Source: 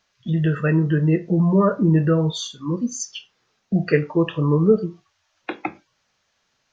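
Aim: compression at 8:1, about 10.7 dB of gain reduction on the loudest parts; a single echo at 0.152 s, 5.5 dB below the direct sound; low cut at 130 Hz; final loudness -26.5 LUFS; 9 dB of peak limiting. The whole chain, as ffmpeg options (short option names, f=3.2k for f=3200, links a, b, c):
-af "highpass=130,acompressor=threshold=-22dB:ratio=8,alimiter=limit=-20.5dB:level=0:latency=1,aecho=1:1:152:0.531,volume=2.5dB"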